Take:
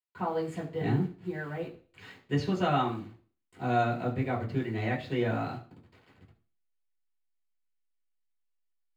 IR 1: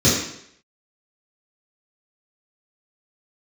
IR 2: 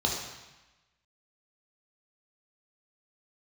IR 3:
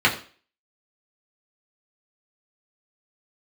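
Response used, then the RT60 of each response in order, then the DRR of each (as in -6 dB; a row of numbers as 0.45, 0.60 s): 3; 0.70, 1.1, 0.40 s; -10.5, -2.0, -4.0 dB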